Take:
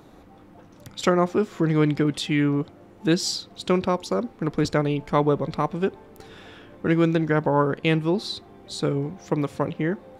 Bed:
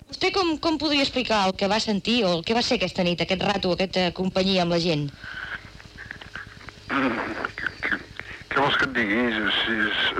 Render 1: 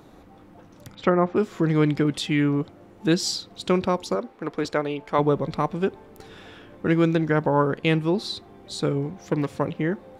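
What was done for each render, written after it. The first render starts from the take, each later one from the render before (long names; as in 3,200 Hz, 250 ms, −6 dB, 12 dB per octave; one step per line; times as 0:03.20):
0:00.95–0:01.36: low-pass filter 2,200 Hz
0:04.15–0:05.19: bass and treble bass −13 dB, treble −5 dB
0:09.10–0:09.58: phase distortion by the signal itself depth 0.17 ms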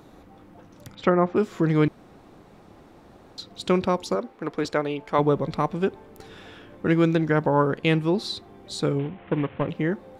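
0:01.88–0:03.38: fill with room tone
0:08.99–0:09.69: variable-slope delta modulation 16 kbit/s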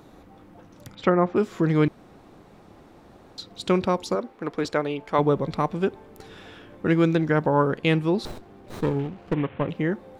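0:08.25–0:09.34: windowed peak hold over 17 samples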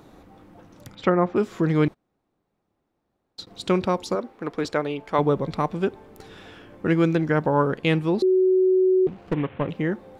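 0:01.87–0:03.47: noise gate −43 dBFS, range −26 dB
0:06.51–0:07.40: notch filter 3,700 Hz
0:08.22–0:09.07: beep over 373 Hz −15 dBFS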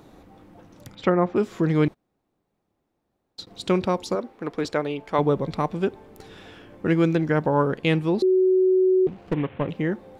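parametric band 1,300 Hz −2 dB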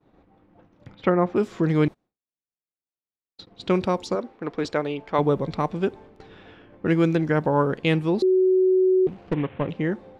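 low-pass that shuts in the quiet parts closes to 2,800 Hz, open at −17.5 dBFS
downward expander −42 dBFS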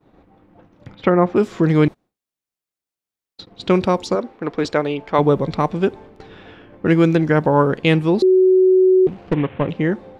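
level +6 dB
brickwall limiter −3 dBFS, peak gain reduction 2.5 dB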